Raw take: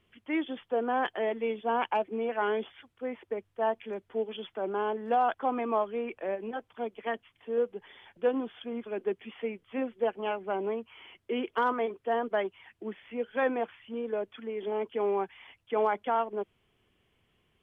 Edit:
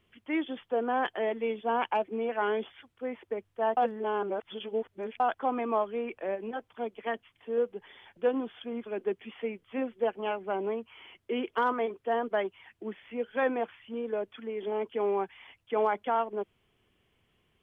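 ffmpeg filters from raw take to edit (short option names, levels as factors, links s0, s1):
-filter_complex "[0:a]asplit=3[s0][s1][s2];[s0]atrim=end=3.772[s3];[s1]atrim=start=3.768:end=5.202,asetpts=PTS-STARTPTS,areverse[s4];[s2]atrim=start=5.198[s5];[s3][s4]acrossfade=d=0.004:c1=hsin:c2=hsin[s6];[s6][s5]acrossfade=d=0.004:c1=hsin:c2=hsin"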